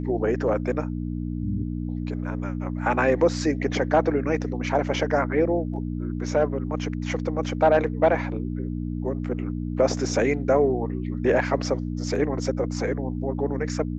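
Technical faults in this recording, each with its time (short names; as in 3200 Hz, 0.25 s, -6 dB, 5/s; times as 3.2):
hum 60 Hz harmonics 5 -29 dBFS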